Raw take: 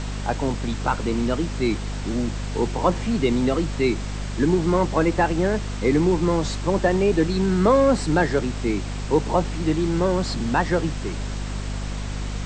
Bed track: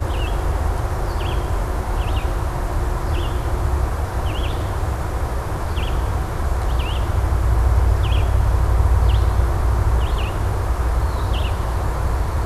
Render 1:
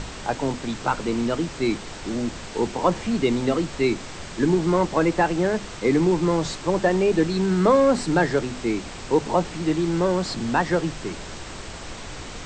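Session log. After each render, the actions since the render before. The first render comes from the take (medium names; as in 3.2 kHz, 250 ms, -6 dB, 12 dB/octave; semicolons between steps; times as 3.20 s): hum notches 50/100/150/200/250 Hz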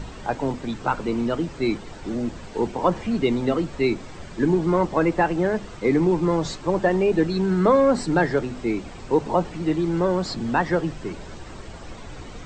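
noise reduction 10 dB, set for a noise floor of -37 dBFS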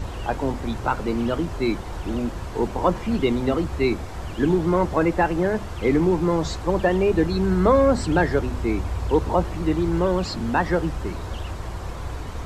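add bed track -11.5 dB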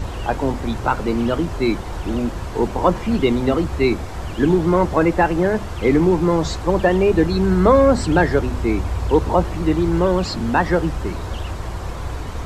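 trim +4 dB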